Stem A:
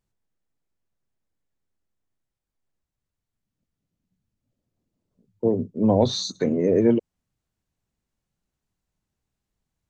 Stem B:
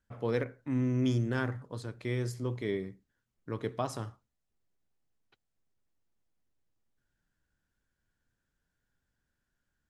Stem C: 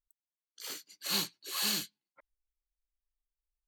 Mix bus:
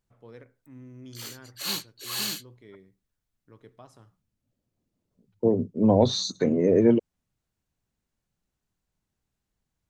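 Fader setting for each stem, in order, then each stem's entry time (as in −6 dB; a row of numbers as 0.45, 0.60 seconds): −0.5, −16.5, +1.5 decibels; 0.00, 0.00, 0.55 seconds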